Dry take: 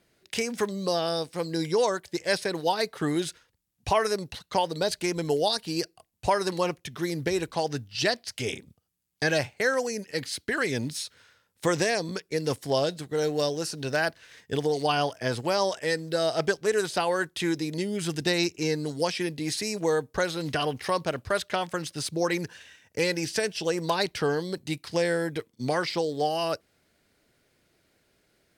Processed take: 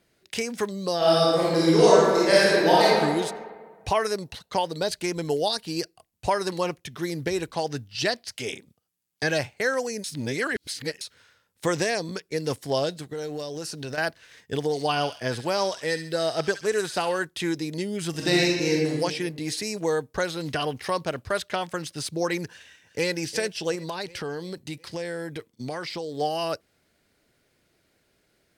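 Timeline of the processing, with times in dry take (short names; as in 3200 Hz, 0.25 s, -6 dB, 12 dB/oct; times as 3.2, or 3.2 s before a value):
0.97–2.98 reverb throw, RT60 1.6 s, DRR -8.5 dB
8.36–9.23 HPF 220 Hz 6 dB/oct
10.04–11.01 reverse
13.06–13.98 compressor, threshold -29 dBFS
14.63–17.19 thin delay 68 ms, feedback 42%, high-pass 1800 Hz, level -8 dB
18.1–18.91 reverb throw, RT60 1.3 s, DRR -3 dB
22.47–23.12 echo throw 0.36 s, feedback 55%, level -14 dB
23.75–26.15 compressor 2.5:1, threshold -31 dBFS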